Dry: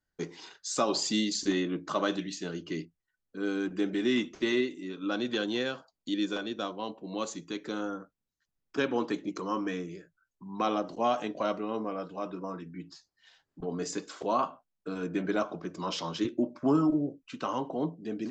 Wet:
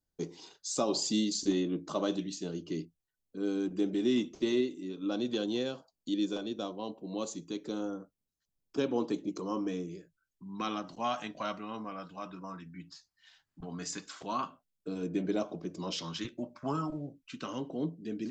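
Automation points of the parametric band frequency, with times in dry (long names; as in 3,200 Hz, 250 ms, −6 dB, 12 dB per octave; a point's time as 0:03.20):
parametric band −13 dB 1.4 octaves
0:09.79 1,700 Hz
0:10.94 430 Hz
0:14.22 430 Hz
0:14.88 1,400 Hz
0:15.86 1,400 Hz
0:16.28 330 Hz
0:17.01 330 Hz
0:17.51 900 Hz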